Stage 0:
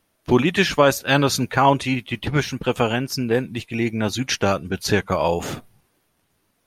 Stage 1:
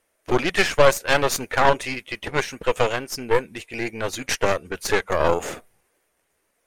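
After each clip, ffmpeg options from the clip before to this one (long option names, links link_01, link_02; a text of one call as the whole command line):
ffmpeg -i in.wav -af "equalizer=frequency=125:width_type=o:width=1:gain=-10,equalizer=frequency=250:width_type=o:width=1:gain=-4,equalizer=frequency=500:width_type=o:width=1:gain=8,equalizer=frequency=2000:width_type=o:width=1:gain=7,equalizer=frequency=4000:width_type=o:width=1:gain=-4,equalizer=frequency=8000:width_type=o:width=1:gain=8,aeval=exprs='1.26*(cos(1*acos(clip(val(0)/1.26,-1,1)))-cos(1*PI/2))+0.251*(cos(4*acos(clip(val(0)/1.26,-1,1)))-cos(4*PI/2))+0.0891*(cos(8*acos(clip(val(0)/1.26,-1,1)))-cos(8*PI/2))':channel_layout=same,volume=-5.5dB" out.wav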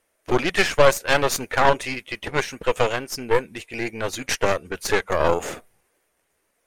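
ffmpeg -i in.wav -af anull out.wav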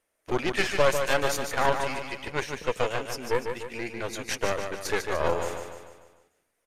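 ffmpeg -i in.wav -af "aresample=32000,aresample=44100,aecho=1:1:148|296|444|592|740|888:0.473|0.237|0.118|0.0591|0.0296|0.0148,volume=-7dB" out.wav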